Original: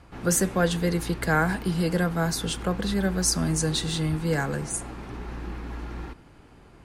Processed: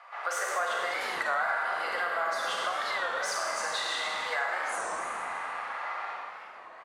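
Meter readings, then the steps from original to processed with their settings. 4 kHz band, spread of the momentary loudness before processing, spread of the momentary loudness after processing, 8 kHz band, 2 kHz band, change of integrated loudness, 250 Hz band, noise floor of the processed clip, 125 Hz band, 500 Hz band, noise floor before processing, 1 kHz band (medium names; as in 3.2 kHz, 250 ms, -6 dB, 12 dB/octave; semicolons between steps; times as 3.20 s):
-3.0 dB, 13 LU, 6 LU, -10.5 dB, +2.0 dB, -5.0 dB, -28.0 dB, -48 dBFS, under -35 dB, -6.5 dB, -52 dBFS, +3.0 dB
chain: overdrive pedal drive 12 dB, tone 2.7 kHz, clips at -9.5 dBFS; Chebyshev high-pass 630 Hz, order 4; treble shelf 3.5 kHz -9 dB; small resonant body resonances 1.2/2 kHz, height 10 dB, ringing for 35 ms; on a send: frequency-shifting echo 108 ms, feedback 64%, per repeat -72 Hz, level -12 dB; on the sum: Schroeder reverb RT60 1.7 s, combs from 33 ms, DRR -1.5 dB; compression 3:1, threshold -29 dBFS, peak gain reduction 10.5 dB; warped record 33 1/3 rpm, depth 160 cents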